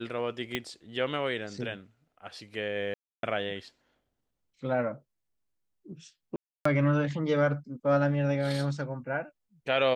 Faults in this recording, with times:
0.55 s: pop -15 dBFS
2.94–3.23 s: dropout 292 ms
6.36–6.65 s: dropout 294 ms

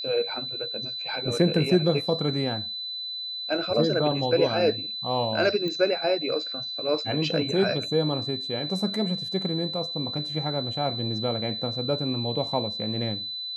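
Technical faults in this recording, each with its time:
whine 4 kHz -31 dBFS
5.68 s: pop -19 dBFS

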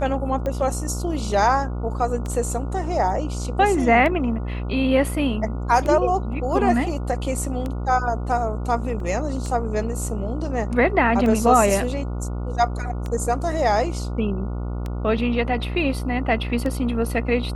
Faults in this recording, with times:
buzz 60 Hz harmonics 24 -27 dBFS
tick 33 1/3 rpm -16 dBFS
9.00 s: dropout 2.4 ms

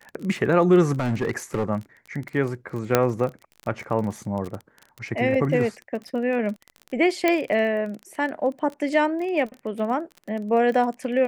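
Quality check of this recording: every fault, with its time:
crackle 23 per s -30 dBFS
1.00–1.70 s: clipped -19 dBFS
2.95 s: pop -3 dBFS
7.28 s: pop -7 dBFS

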